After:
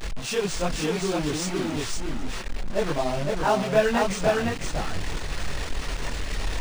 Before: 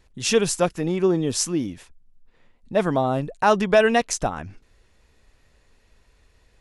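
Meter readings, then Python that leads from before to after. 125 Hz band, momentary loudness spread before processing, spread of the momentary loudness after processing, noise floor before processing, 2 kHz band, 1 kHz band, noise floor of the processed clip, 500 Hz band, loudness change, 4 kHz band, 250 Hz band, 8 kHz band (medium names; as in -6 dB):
-0.5 dB, 9 LU, 11 LU, -61 dBFS, -2.0 dB, -3.0 dB, -32 dBFS, -3.5 dB, -5.5 dB, -0.5 dB, -3.5 dB, -5.0 dB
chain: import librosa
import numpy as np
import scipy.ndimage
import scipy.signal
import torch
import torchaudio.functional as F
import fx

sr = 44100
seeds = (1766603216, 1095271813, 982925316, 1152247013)

y = fx.delta_mod(x, sr, bps=64000, step_db=-20.5)
y = fx.chorus_voices(y, sr, voices=6, hz=0.97, base_ms=24, depth_ms=3.8, mix_pct=60)
y = y + 10.0 ** (-3.0 / 20.0) * np.pad(y, (int(509 * sr / 1000.0), 0))[:len(y)]
y = np.interp(np.arange(len(y)), np.arange(len(y))[::3], y[::3])
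y = y * librosa.db_to_amplitude(-2.5)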